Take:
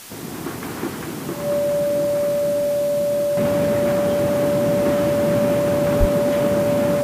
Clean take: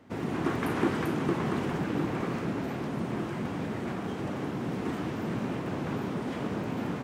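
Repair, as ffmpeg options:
-filter_complex "[0:a]bandreject=f=580:w=30,asplit=3[s0][s1][s2];[s0]afade=t=out:st=5.99:d=0.02[s3];[s1]highpass=f=140:w=0.5412,highpass=f=140:w=1.3066,afade=t=in:st=5.99:d=0.02,afade=t=out:st=6.11:d=0.02[s4];[s2]afade=t=in:st=6.11:d=0.02[s5];[s3][s4][s5]amix=inputs=3:normalize=0,afwtdn=0.013,asetnsamples=n=441:p=0,asendcmd='3.37 volume volume -10dB',volume=1"

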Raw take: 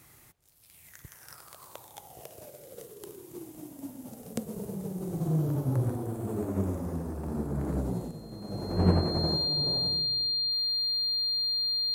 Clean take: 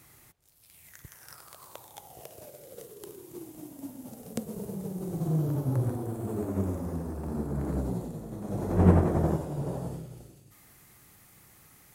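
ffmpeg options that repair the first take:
-af "bandreject=f=4200:w=30,asetnsamples=n=441:p=0,asendcmd='8.11 volume volume 3.5dB',volume=1"

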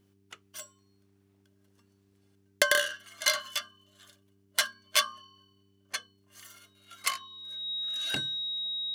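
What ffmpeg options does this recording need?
-af "bandreject=f=98.5:t=h:w=4,bandreject=f=197:t=h:w=4,bandreject=f=295.5:t=h:w=4,bandreject=f=394:t=h:w=4,bandreject=f=3800:w=30"

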